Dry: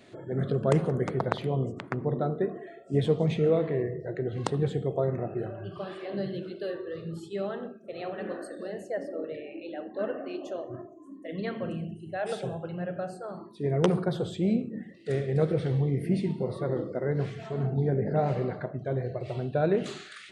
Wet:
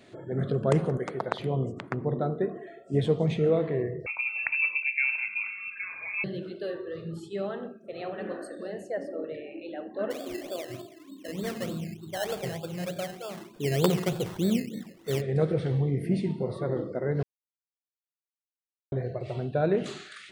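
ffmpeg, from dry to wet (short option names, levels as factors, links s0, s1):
-filter_complex "[0:a]asettb=1/sr,asplit=3[s0][s1][s2];[s0]atrim=end=0.974[s3];[s1]atrim=start=0.97:end=1.4,asetpts=PTS-STARTPTS,afade=t=in:d=0.004:c=qsin,afade=t=out:st=0.426:d=0.004:c=qsin,highpass=f=420:p=1[s4];[s2]atrim=start=1.396[s5];[s3][s4]acrossfade=d=0.004:c1=hsin:c2=qsin[s6];[s6][s5]acrossfade=d=0.004:c1=qsin:c2=hsin,asettb=1/sr,asplit=3[s7][s8][s9];[s7]atrim=end=4.064[s10];[s8]atrim=start=4.06:end=6.24,asetpts=PTS-STARTPTS,afade=t=in:d=0.004:c=qsin,afade=t=out:st=2.176:d=0.004:c=qsin,lowpass=f=2400:t=q:w=0.5098,lowpass=f=2400:t=q:w=0.6013,lowpass=f=2400:t=q:w=0.9,lowpass=f=2400:t=q:w=2.563,afreqshift=-2800[s11];[s9]atrim=start=6.236[s12];[s10][s11]acrossfade=d=0.004:c1=hsin:c2=qsin[s13];[s13][s12]acrossfade=d=0.004:c1=qsin:c2=hsin,asplit=3[s14][s15][s16];[s14]afade=t=out:st=10.1:d=0.02[s17];[s15]acrusher=samples=15:mix=1:aa=0.000001:lfo=1:lforange=9:lforate=3.3,afade=t=in:st=10.1:d=0.02,afade=t=out:st=15.2:d=0.02[s18];[s16]afade=t=in:st=15.2:d=0.02[s19];[s17][s18][s19]amix=inputs=3:normalize=0,asplit=3[s20][s21][s22];[s20]atrim=end=17.23,asetpts=PTS-STARTPTS,afade=t=out:st=17.226:d=0.004:c=hsin[s23];[s21]atrim=start=17.23:end=18.92,asetpts=PTS-STARTPTS,volume=0[s24];[s22]atrim=start=18.92,asetpts=PTS-STARTPTS,afade=t=in:d=0.004:c=hsin[s25];[s23][s24][s25]concat=n=3:v=0:a=1"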